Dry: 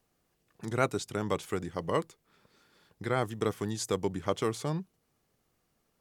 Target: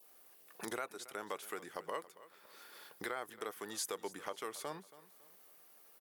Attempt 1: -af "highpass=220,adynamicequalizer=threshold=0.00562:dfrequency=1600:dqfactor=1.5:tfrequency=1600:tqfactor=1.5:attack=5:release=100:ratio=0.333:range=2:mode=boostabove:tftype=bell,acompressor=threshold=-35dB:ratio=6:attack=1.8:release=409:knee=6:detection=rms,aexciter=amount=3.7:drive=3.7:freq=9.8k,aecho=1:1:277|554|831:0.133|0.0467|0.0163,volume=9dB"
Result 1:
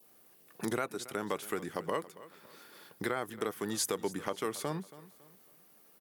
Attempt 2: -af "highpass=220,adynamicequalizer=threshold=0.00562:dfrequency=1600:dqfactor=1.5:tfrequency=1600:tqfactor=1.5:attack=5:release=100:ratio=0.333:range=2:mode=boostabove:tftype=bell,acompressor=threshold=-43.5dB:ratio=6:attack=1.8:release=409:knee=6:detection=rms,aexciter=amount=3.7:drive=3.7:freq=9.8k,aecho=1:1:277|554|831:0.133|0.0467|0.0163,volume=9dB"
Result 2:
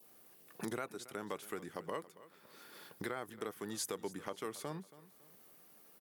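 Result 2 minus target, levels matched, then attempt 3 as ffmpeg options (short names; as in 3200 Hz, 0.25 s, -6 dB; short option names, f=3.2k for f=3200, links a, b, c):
250 Hz band +5.0 dB
-af "highpass=480,adynamicequalizer=threshold=0.00562:dfrequency=1600:dqfactor=1.5:tfrequency=1600:tqfactor=1.5:attack=5:release=100:ratio=0.333:range=2:mode=boostabove:tftype=bell,acompressor=threshold=-43.5dB:ratio=6:attack=1.8:release=409:knee=6:detection=rms,aexciter=amount=3.7:drive=3.7:freq=9.8k,aecho=1:1:277|554|831:0.133|0.0467|0.0163,volume=9dB"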